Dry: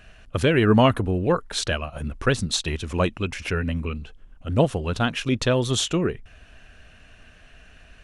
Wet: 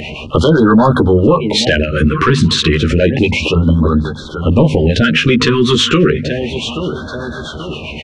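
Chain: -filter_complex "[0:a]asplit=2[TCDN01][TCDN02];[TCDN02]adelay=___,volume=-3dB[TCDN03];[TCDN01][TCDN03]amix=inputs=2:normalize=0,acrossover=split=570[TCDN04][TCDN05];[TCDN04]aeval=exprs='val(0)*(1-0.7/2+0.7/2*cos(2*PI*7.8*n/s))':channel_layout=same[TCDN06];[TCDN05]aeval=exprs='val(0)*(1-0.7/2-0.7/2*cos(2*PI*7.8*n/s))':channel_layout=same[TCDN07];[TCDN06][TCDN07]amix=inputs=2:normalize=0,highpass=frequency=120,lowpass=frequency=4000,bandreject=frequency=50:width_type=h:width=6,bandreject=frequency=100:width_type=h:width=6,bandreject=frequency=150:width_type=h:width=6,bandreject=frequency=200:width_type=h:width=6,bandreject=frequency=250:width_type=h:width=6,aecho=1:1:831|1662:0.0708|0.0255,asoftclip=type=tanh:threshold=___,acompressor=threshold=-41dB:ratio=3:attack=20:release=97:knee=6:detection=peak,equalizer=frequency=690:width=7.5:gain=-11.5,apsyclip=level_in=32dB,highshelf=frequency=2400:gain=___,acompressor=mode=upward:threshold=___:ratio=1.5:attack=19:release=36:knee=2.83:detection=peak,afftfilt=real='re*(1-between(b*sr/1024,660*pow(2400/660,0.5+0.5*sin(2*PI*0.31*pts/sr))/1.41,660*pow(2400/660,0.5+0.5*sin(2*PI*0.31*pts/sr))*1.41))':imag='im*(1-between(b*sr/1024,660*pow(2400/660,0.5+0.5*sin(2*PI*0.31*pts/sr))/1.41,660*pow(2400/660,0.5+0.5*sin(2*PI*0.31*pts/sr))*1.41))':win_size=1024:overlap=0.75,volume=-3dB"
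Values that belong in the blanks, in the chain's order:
13, -11.5dB, -4.5, -12dB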